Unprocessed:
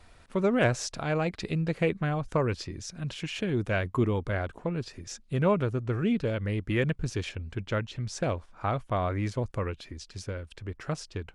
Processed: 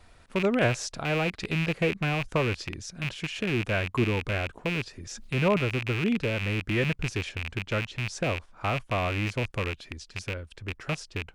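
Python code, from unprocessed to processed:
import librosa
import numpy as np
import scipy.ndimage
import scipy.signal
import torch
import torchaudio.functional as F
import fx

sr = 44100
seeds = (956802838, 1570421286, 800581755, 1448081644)

y = fx.rattle_buzz(x, sr, strikes_db=-34.0, level_db=-20.0)
y = fx.sustainer(y, sr, db_per_s=44.0, at=(4.9, 5.57))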